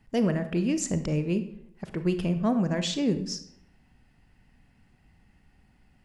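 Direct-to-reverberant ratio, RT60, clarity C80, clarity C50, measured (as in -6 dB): 9.5 dB, 0.75 s, 14.0 dB, 11.5 dB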